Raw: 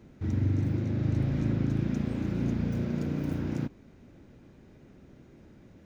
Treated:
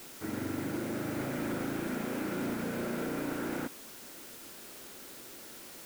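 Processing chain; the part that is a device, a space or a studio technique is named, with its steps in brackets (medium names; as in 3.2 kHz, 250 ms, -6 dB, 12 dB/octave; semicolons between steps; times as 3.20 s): drive-through speaker (band-pass 410–2900 Hz; peaking EQ 1.4 kHz +6 dB 0.25 oct; hard clipper -35.5 dBFS, distortion -14 dB; white noise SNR 12 dB); trim +6 dB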